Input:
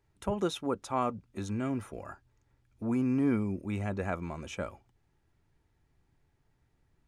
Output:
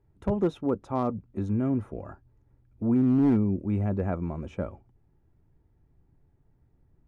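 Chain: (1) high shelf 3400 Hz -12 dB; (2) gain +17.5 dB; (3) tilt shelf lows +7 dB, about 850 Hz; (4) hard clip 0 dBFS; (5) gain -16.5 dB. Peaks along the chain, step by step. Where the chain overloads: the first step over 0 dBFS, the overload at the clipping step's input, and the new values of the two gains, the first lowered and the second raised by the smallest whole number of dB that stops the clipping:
-18.0, -0.5, +4.0, 0.0, -16.5 dBFS; step 3, 4.0 dB; step 2 +13.5 dB, step 5 -12.5 dB

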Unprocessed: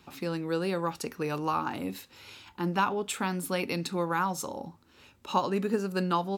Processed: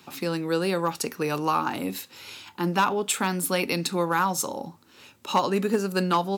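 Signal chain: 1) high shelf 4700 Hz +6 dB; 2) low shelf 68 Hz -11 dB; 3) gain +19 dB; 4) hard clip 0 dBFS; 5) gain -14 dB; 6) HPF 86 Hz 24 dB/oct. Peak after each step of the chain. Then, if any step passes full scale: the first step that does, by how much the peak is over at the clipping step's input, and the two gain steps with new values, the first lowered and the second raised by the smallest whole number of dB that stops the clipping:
-12.5, -12.5, +6.5, 0.0, -14.0, -10.5 dBFS; step 3, 6.5 dB; step 3 +12 dB, step 5 -7 dB

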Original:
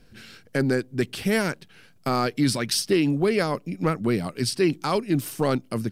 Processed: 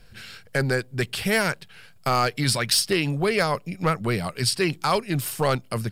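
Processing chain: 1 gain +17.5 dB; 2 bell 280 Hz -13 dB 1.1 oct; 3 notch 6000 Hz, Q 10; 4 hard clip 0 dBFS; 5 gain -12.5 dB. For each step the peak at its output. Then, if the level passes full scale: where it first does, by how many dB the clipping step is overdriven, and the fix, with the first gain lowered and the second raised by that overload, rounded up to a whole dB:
+6.5, +5.5, +5.0, 0.0, -12.5 dBFS; step 1, 5.0 dB; step 1 +12.5 dB, step 5 -7.5 dB

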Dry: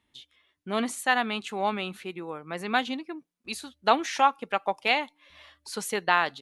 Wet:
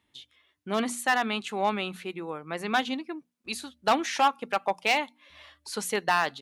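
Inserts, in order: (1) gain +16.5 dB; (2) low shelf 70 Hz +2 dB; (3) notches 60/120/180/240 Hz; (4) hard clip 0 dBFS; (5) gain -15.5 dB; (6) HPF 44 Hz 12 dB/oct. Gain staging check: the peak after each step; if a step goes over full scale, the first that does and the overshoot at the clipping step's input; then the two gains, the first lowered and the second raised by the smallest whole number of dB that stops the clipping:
+10.0, +10.0, +10.0, 0.0, -15.5, -14.0 dBFS; step 1, 10.0 dB; step 1 +6.5 dB, step 5 -5.5 dB

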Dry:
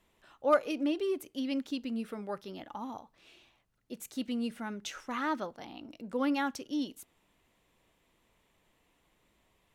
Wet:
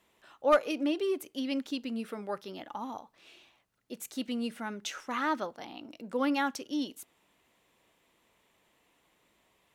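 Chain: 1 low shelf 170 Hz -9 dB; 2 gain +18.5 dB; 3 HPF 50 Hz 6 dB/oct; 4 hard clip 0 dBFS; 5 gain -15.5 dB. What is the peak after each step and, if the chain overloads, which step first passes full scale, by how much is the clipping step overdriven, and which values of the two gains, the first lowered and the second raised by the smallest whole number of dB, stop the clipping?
-14.5, +4.0, +4.5, 0.0, -15.5 dBFS; step 2, 4.5 dB; step 2 +13.5 dB, step 5 -10.5 dB

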